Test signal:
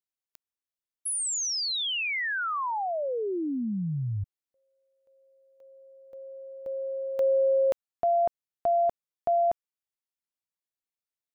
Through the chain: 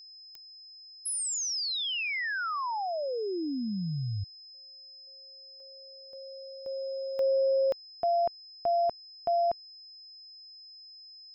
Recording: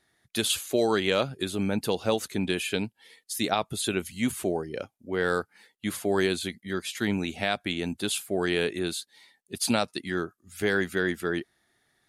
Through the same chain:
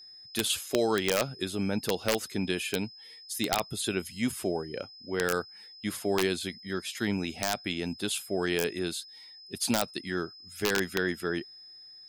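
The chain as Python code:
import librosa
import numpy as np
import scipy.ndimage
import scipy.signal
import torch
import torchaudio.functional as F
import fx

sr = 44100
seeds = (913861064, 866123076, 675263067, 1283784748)

y = x + 10.0 ** (-45.0 / 20.0) * np.sin(2.0 * np.pi * 5100.0 * np.arange(len(x)) / sr)
y = (np.mod(10.0 ** (13.0 / 20.0) * y + 1.0, 2.0) - 1.0) / 10.0 ** (13.0 / 20.0)
y = F.gain(torch.from_numpy(y), -2.5).numpy()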